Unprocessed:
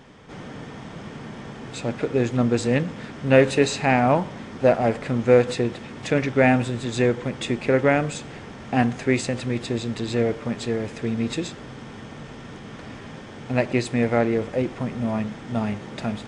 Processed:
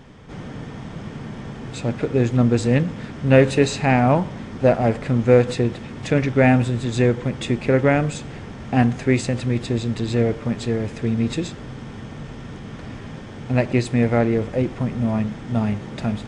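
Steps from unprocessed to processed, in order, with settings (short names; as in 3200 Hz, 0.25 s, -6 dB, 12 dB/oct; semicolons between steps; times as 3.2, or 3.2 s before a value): low shelf 170 Hz +10 dB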